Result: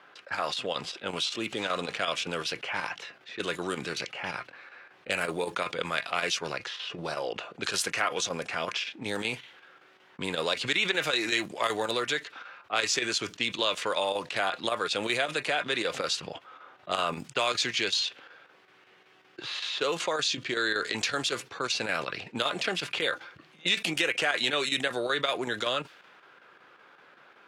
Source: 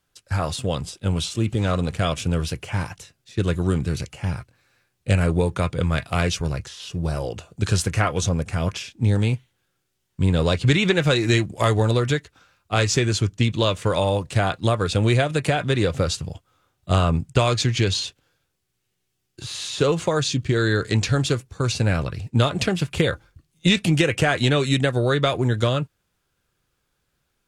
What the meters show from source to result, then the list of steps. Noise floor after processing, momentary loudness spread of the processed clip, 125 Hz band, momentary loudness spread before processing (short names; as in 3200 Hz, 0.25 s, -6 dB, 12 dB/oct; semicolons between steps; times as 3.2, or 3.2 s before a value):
-59 dBFS, 10 LU, -25.5 dB, 9 LU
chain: low-pass opened by the level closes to 1600 Hz, open at -15 dBFS; tilt +4.5 dB/oct; chopper 5.3 Hz, depth 60%, duty 85%; HPF 260 Hz 12 dB/oct; bell 8400 Hz -14.5 dB 1.7 oct; fast leveller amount 50%; gain -7.5 dB